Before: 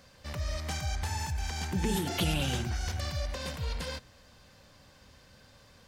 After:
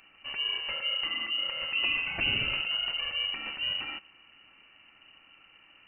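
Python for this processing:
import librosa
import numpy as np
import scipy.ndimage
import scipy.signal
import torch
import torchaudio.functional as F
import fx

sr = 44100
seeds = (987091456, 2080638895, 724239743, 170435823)

y = fx.freq_invert(x, sr, carrier_hz=2900)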